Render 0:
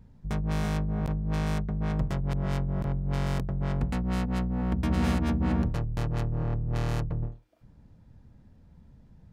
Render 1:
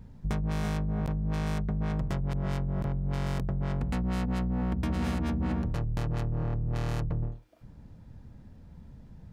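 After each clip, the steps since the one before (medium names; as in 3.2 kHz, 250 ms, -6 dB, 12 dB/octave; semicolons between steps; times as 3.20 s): in parallel at +2 dB: peak limiter -24.5 dBFS, peak gain reduction 10 dB; on the sum: compression, threshold -24 dBFS, peak gain reduction 7 dB; trim -2 dB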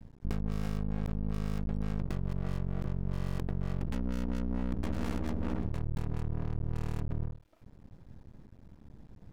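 half-wave rectifier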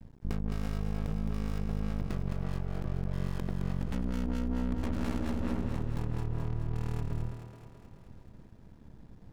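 thinning echo 215 ms, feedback 66%, high-pass 180 Hz, level -6 dB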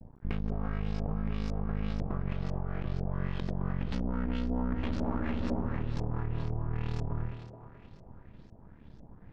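LFO low-pass saw up 2 Hz 580–6000 Hz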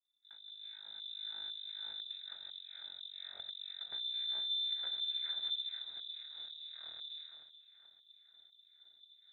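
fade-in on the opening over 1.25 s; vowel filter i; frequency inversion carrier 3.8 kHz; trim +3 dB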